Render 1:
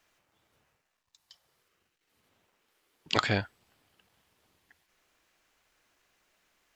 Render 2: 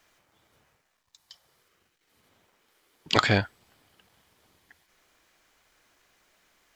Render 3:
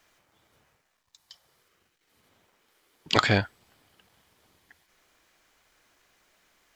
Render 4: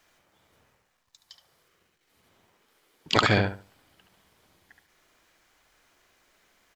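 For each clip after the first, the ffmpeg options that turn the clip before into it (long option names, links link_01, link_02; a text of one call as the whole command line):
ffmpeg -i in.wav -filter_complex "[0:a]bandreject=frequency=2700:width=19,asplit=2[link_01][link_02];[link_02]asoftclip=type=hard:threshold=-24dB,volume=-11.5dB[link_03];[link_01][link_03]amix=inputs=2:normalize=0,volume=4dB" out.wav
ffmpeg -i in.wav -af anull out.wav
ffmpeg -i in.wav -filter_complex "[0:a]asplit=2[link_01][link_02];[link_02]adelay=72,lowpass=frequency=2000:poles=1,volume=-3.5dB,asplit=2[link_03][link_04];[link_04]adelay=72,lowpass=frequency=2000:poles=1,volume=0.26,asplit=2[link_05][link_06];[link_06]adelay=72,lowpass=frequency=2000:poles=1,volume=0.26,asplit=2[link_07][link_08];[link_08]adelay=72,lowpass=frequency=2000:poles=1,volume=0.26[link_09];[link_01][link_03][link_05][link_07][link_09]amix=inputs=5:normalize=0" out.wav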